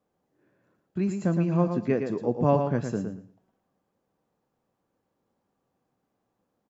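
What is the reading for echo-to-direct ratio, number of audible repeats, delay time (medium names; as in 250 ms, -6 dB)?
-6.5 dB, 2, 114 ms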